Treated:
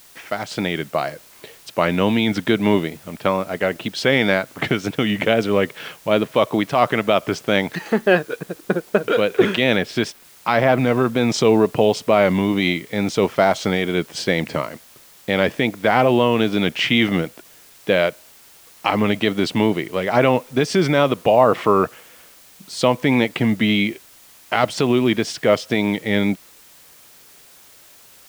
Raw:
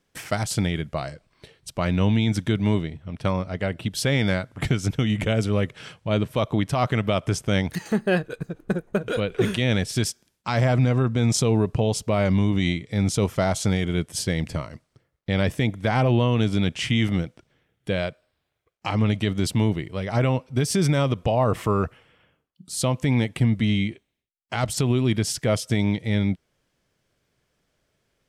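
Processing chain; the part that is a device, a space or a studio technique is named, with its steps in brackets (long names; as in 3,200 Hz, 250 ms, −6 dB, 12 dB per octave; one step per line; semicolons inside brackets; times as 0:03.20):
dictaphone (band-pass filter 280–3,600 Hz; automatic gain control gain up to 12 dB; tape wow and flutter; white noise bed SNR 28 dB)
0:09.75–0:10.78: dynamic equaliser 6,500 Hz, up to −4 dB, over −38 dBFS, Q 0.78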